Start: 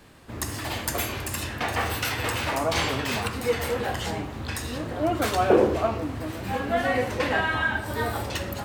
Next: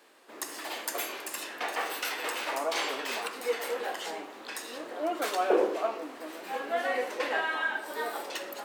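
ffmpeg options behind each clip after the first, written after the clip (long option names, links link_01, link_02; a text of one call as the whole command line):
ffmpeg -i in.wav -af "highpass=frequency=340:width=0.5412,highpass=frequency=340:width=1.3066,volume=-5dB" out.wav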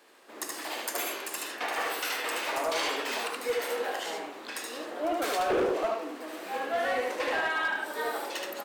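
ffmpeg -i in.wav -filter_complex "[0:a]asplit=2[link_01][link_02];[link_02]aecho=0:1:75:0.708[link_03];[link_01][link_03]amix=inputs=2:normalize=0,asoftclip=type=hard:threshold=-23dB" out.wav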